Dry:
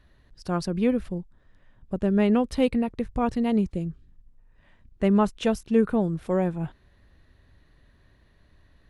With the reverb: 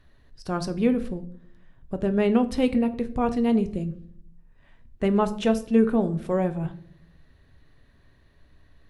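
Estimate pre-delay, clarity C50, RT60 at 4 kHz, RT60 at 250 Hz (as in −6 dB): 3 ms, 15.5 dB, 0.40 s, 0.90 s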